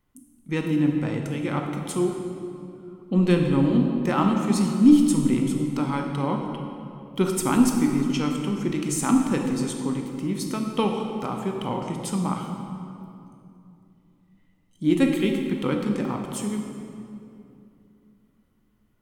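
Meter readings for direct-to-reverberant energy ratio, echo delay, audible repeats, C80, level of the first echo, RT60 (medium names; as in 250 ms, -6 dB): 2.5 dB, no echo, no echo, 4.5 dB, no echo, 2.7 s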